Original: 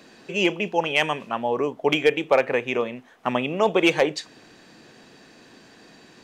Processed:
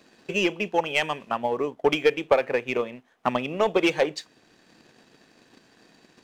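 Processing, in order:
leveller curve on the samples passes 1
transient designer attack +7 dB, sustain −2 dB
level −7.5 dB

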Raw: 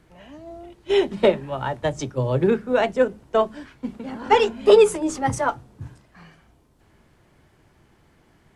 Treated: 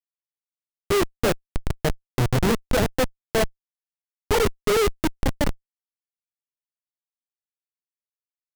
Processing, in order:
rotating-speaker cabinet horn 7.5 Hz
comparator with hysteresis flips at −20 dBFS
level +6.5 dB

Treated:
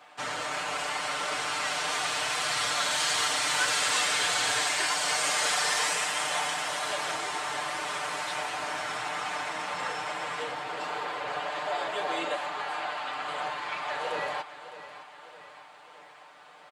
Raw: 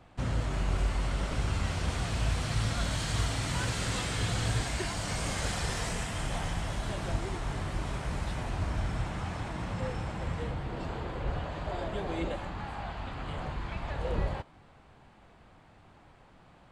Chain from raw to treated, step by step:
high-pass filter 740 Hz 12 dB per octave
comb filter 6.7 ms, depth 82%
on a send: repeating echo 610 ms, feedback 55%, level −14 dB
on the sum: level +7.5 dB

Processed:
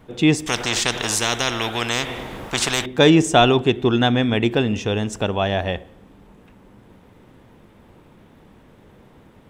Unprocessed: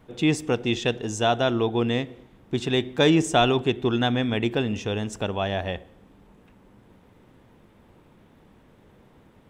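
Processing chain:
0:00.46–0:02.86: every bin compressed towards the loudest bin 4 to 1
level +5.5 dB

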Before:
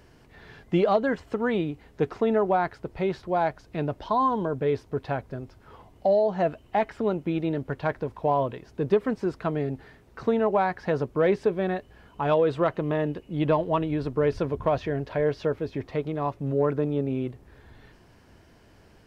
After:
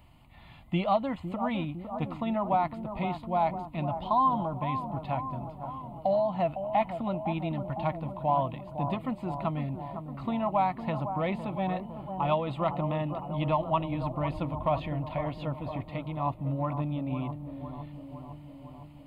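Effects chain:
phaser with its sweep stopped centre 1,600 Hz, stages 6
bucket-brigade delay 507 ms, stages 4,096, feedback 67%, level −9 dB

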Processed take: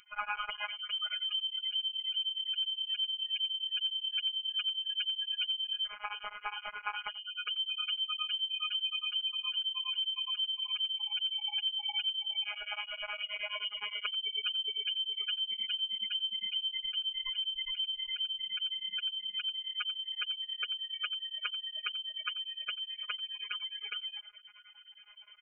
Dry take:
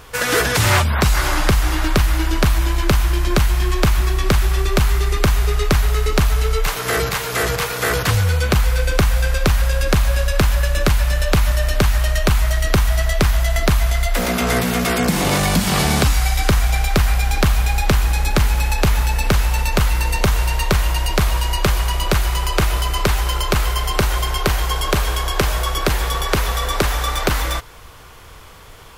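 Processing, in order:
gate on every frequency bin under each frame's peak −15 dB strong
low-shelf EQ 390 Hz −9 dB
notch filter 1,200 Hz, Q 30
reversed playback
upward compression, threshold −36 dBFS
reversed playback
phases set to zero 181 Hz
speed change +14%
phaser with its sweep stopped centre 1,900 Hz, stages 8
single-tap delay 88 ms −18.5 dB
voice inversion scrambler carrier 3,100 Hz
tremolo along a rectified sine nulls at 9.6 Hz
level −7.5 dB

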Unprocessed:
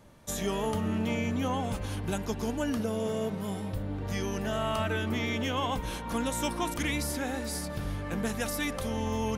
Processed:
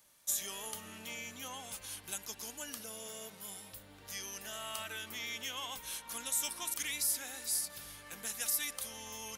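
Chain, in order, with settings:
first-order pre-emphasis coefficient 0.97
level +3.5 dB

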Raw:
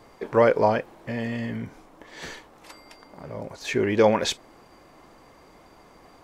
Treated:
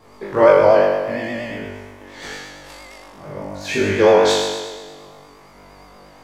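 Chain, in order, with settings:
flutter between parallel walls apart 3.5 metres, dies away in 1.4 s
pitch vibrato 8.6 Hz 55 cents

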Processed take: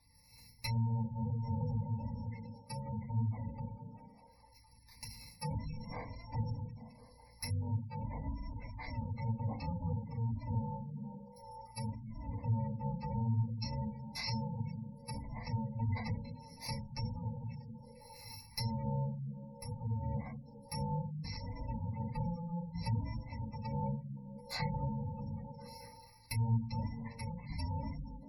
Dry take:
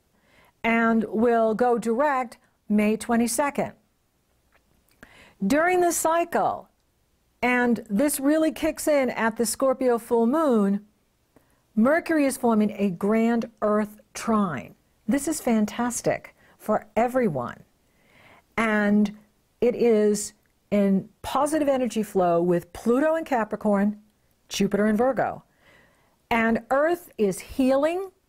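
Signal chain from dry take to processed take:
samples in bit-reversed order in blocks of 128 samples
treble cut that deepens with the level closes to 800 Hz, closed at −21.5 dBFS
EQ curve with evenly spaced ripples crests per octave 0.91, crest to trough 10 dB
echo through a band-pass that steps 211 ms, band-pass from 170 Hz, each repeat 0.7 octaves, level −11 dB
0:13.54–0:14.38: dynamic equaliser 160 Hz, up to +3 dB, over −47 dBFS, Q 3.3
downward compressor 2.5 to 1, threshold −43 dBFS, peak gain reduction 14.5 dB
sample-and-hold tremolo
phaser with its sweep stopped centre 2,000 Hz, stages 8
feedback delay network reverb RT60 0.39 s, low-frequency decay 1.5×, high-frequency decay 0.9×, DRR −5.5 dB
gate on every frequency bin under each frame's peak −25 dB strong
level +1.5 dB

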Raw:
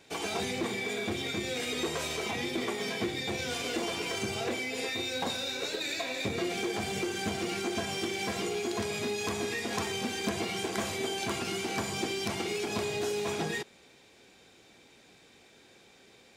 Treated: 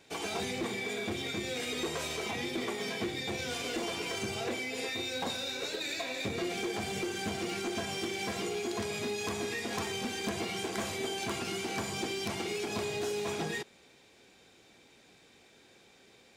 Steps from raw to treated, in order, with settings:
hard clipping −25.5 dBFS, distortion −24 dB
level −2 dB

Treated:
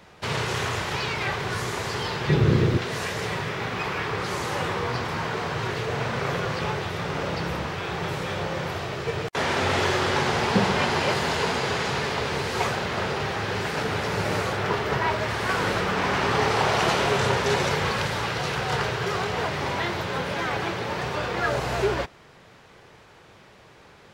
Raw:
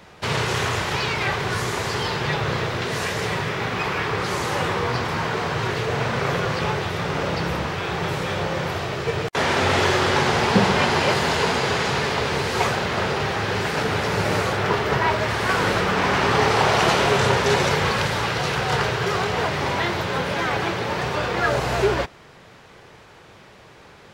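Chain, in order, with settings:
0:02.29–0:02.78: low shelf with overshoot 470 Hz +11 dB, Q 1.5
level −4 dB

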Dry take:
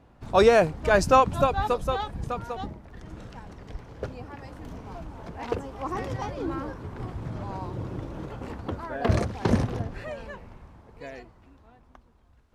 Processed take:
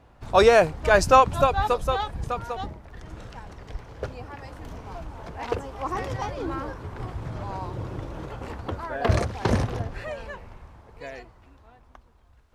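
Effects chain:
parametric band 220 Hz −6.5 dB 1.6 octaves
level +3.5 dB

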